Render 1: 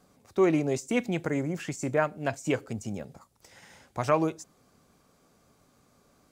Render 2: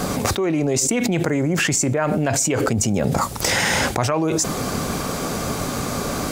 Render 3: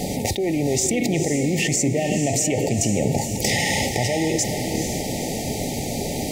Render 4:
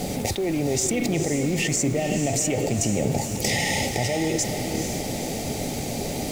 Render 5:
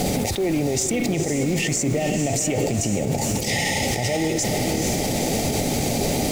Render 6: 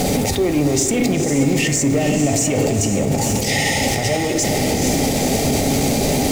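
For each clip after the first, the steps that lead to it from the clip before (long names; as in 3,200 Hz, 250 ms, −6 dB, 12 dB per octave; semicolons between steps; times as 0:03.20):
envelope flattener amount 100%; level −1 dB
feedback delay with all-pass diffusion 471 ms, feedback 48%, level −7 dB; brick-wall band-stop 900–1,800 Hz; level −2 dB
background noise pink −41 dBFS; level −2.5 dB
in parallel at 0 dB: compressor whose output falls as the input rises −29 dBFS; on the sum: brickwall limiter −13 dBFS, peak gain reduction 9.5 dB
soft clipping −15 dBFS, distortion −21 dB; convolution reverb RT60 1.1 s, pre-delay 4 ms, DRR 8 dB; level +5 dB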